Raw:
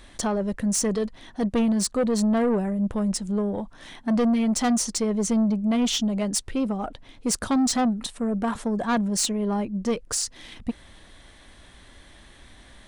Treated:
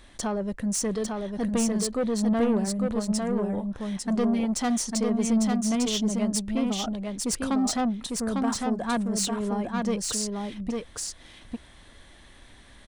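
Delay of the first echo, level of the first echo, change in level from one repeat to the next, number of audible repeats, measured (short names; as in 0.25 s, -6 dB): 0.851 s, -3.5 dB, no steady repeat, 1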